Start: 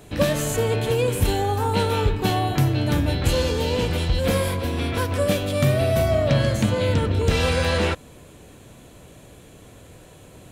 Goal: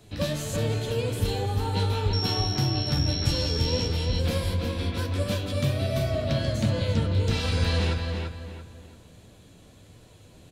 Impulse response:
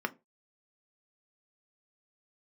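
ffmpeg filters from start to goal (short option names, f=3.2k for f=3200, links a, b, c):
-filter_complex "[0:a]equalizer=f=4.5k:w=1.2:g=8.5,acrossover=split=260|3100[a][b][c];[a]acontrast=32[d];[d][b][c]amix=inputs=3:normalize=0,asettb=1/sr,asplit=3[e][f][g];[e]atrim=end=2.134[h];[f]atrim=start=2.13:end=3.87,asetpts=PTS-STARTPTS,afade=t=in:d=0.004:c=qsin,afade=t=out:st=1.736:d=0.004:c=qsin,aeval=exprs='val(0)+0.126*sin(2*PI*5500*n/s)':c=same[i];[g]atrim=start=3.866[j];[h][i]acrossfade=d=0.004:c1=hsin:c2=qsin[k];[k][j]acrossfade=d=0.004:c1=qsin:c2=hsin,flanger=delay=8.5:depth=4.8:regen=46:speed=1.5:shape=triangular,asplit=2[l][m];[m]adelay=339,lowpass=f=3.3k:p=1,volume=-4dB,asplit=2[n][o];[o]adelay=339,lowpass=f=3.3k:p=1,volume=0.36,asplit=2[p][q];[q]adelay=339,lowpass=f=3.3k:p=1,volume=0.36,asplit=2[r][s];[s]adelay=339,lowpass=f=3.3k:p=1,volume=0.36,asplit=2[t][u];[u]adelay=339,lowpass=f=3.3k:p=1,volume=0.36[v];[l][n][p][r][t][v]amix=inputs=6:normalize=0,volume=-6.5dB"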